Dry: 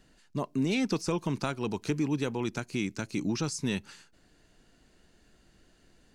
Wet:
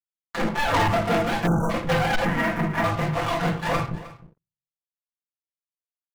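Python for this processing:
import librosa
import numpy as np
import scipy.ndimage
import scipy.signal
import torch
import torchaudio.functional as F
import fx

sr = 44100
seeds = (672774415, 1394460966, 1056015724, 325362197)

p1 = fx.octave_mirror(x, sr, pivot_hz=480.0)
p2 = fx.over_compress(p1, sr, threshold_db=-43.0, ratio=-1.0)
p3 = p1 + (p2 * 10.0 ** (-1.0 / 20.0))
p4 = fx.backlash(p3, sr, play_db=-45.0)
p5 = fx.chorus_voices(p4, sr, voices=2, hz=0.37, base_ms=28, depth_ms=1.4, mix_pct=20)
p6 = fx.power_curve(p5, sr, exponent=3.0)
p7 = p6 + 0.7 * np.pad(p6, (int(5.9 * sr / 1000.0), 0))[:len(p6)]
p8 = fx.room_shoebox(p7, sr, seeds[0], volume_m3=280.0, walls='furnished', distance_m=1.8)
p9 = fx.leveller(p8, sr, passes=5)
p10 = fx.graphic_eq(p9, sr, hz=(125, 250, 500, 2000, 4000, 8000), db=(-6, 7, -6, 4, -7, -4), at=(2.25, 2.84))
p11 = p10 + 10.0 ** (-17.5 / 20.0) * np.pad(p10, (int(311 * sr / 1000.0), 0))[:len(p10)]
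p12 = fx.spec_erase(p11, sr, start_s=1.47, length_s=0.23, low_hz=1600.0, high_hz=5700.0)
y = p12 * 10.0 ** (5.0 / 20.0)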